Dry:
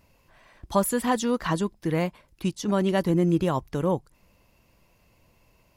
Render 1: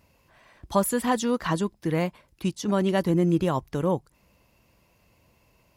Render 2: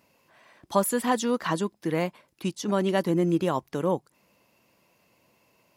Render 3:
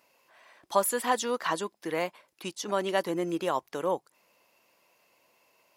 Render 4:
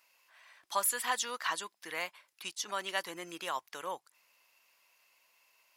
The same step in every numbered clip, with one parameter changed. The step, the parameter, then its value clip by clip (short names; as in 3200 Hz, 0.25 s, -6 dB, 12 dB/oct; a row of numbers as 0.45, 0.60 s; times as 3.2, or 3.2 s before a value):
HPF, cutoff: 43, 190, 470, 1300 Hz